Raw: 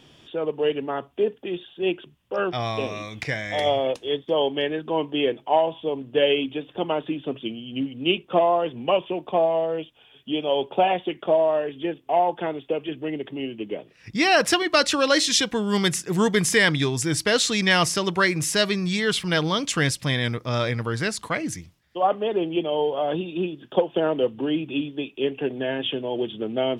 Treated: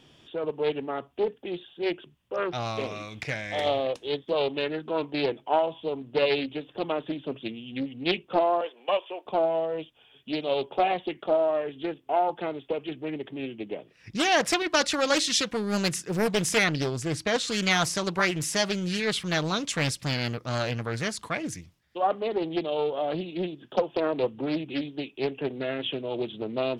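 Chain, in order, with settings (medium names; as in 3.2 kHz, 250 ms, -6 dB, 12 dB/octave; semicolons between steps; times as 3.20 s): 8.61–9.26 s: high-pass 470 Hz 24 dB/octave; 16.64–17.48 s: treble shelf 4.3 kHz -9 dB; loudspeaker Doppler distortion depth 0.61 ms; trim -4 dB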